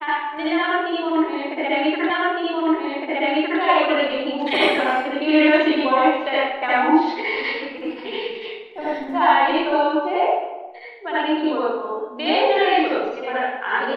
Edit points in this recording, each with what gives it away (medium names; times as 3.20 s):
2.10 s: repeat of the last 1.51 s